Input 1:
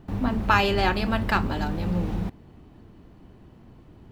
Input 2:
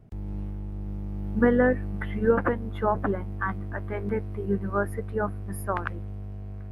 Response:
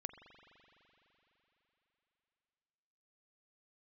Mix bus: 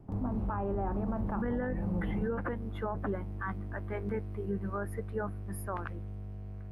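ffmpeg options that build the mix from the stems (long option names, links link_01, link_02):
-filter_complex "[0:a]lowpass=frequency=1100:width=0.5412,lowpass=frequency=1100:width=1.3066,volume=-7dB[link_01];[1:a]volume=-5dB[link_02];[link_01][link_02]amix=inputs=2:normalize=0,acrossover=split=200[link_03][link_04];[link_04]acompressor=threshold=-28dB:ratio=6[link_05];[link_03][link_05]amix=inputs=2:normalize=0,alimiter=level_in=1dB:limit=-24dB:level=0:latency=1:release=18,volume=-1dB"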